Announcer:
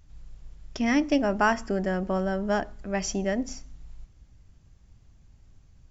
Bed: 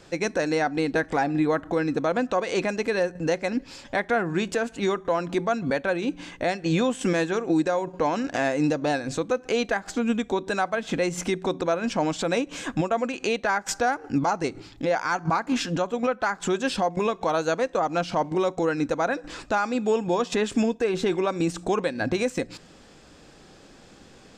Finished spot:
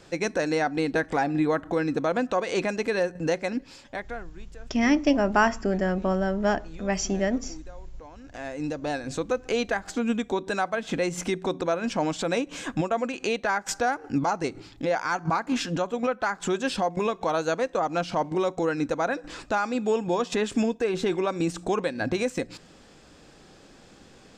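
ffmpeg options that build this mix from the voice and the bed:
-filter_complex "[0:a]adelay=3950,volume=2dB[a];[1:a]volume=20dB,afade=t=out:st=3.37:d=0.95:silence=0.0841395,afade=t=in:st=8.17:d=1.12:silence=0.0891251[b];[a][b]amix=inputs=2:normalize=0"

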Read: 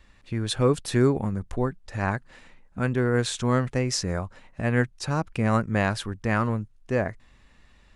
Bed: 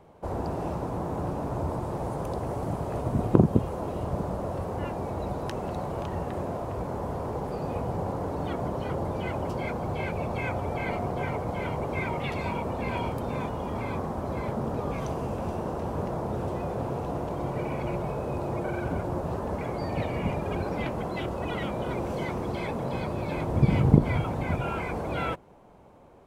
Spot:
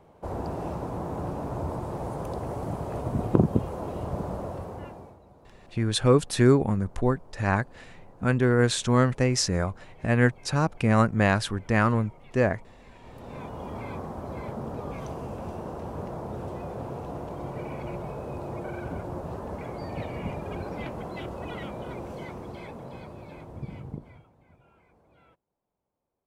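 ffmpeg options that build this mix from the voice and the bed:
-filter_complex "[0:a]adelay=5450,volume=2dB[a];[1:a]volume=16.5dB,afade=t=out:st=4.36:d=0.83:silence=0.0891251,afade=t=in:st=13.01:d=0.61:silence=0.125893,afade=t=out:st=21.4:d=2.9:silence=0.0473151[b];[a][b]amix=inputs=2:normalize=0"

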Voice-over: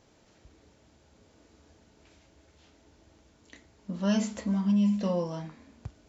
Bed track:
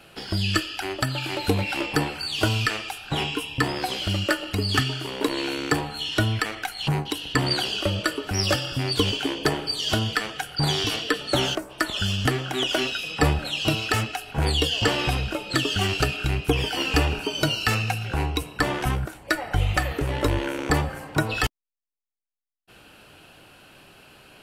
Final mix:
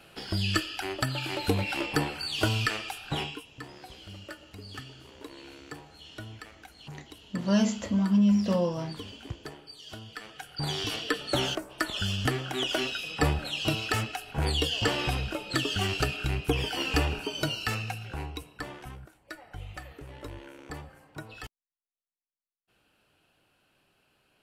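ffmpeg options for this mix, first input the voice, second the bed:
-filter_complex "[0:a]adelay=3450,volume=2.5dB[a];[1:a]volume=11dB,afade=t=out:st=3.1:d=0.36:silence=0.158489,afade=t=in:st=10.07:d=1.04:silence=0.177828,afade=t=out:st=17.01:d=1.88:silence=0.199526[b];[a][b]amix=inputs=2:normalize=0"

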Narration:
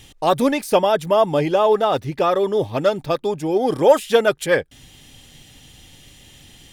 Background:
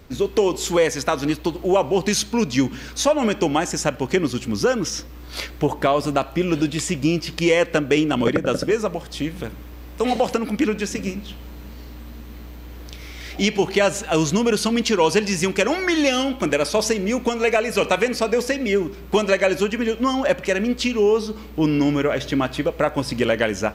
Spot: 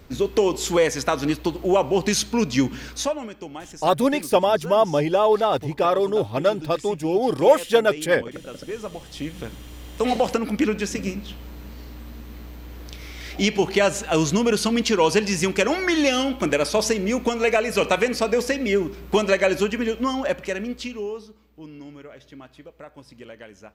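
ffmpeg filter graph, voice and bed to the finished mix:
-filter_complex "[0:a]adelay=3600,volume=-2dB[a];[1:a]volume=14.5dB,afade=t=out:st=2.84:d=0.43:silence=0.16788,afade=t=in:st=8.53:d=1.36:silence=0.16788,afade=t=out:st=19.63:d=1.75:silence=0.0891251[b];[a][b]amix=inputs=2:normalize=0"

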